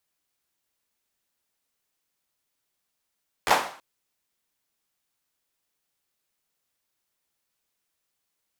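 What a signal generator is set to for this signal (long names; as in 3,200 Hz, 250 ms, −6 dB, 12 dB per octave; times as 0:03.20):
synth clap length 0.33 s, apart 12 ms, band 840 Hz, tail 0.48 s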